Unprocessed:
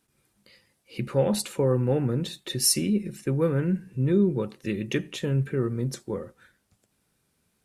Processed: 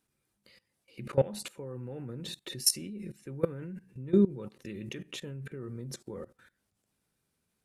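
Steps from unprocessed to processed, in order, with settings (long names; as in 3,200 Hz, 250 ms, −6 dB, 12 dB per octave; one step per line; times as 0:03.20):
output level in coarse steps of 20 dB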